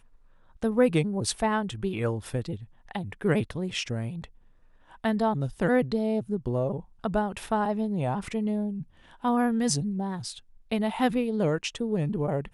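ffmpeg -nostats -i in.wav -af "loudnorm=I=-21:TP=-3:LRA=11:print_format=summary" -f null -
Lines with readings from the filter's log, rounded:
Input Integrated:    -28.3 LUFS
Input True Peak:     -10.0 dBTP
Input LRA:             1.8 LU
Input Threshold:     -38.8 LUFS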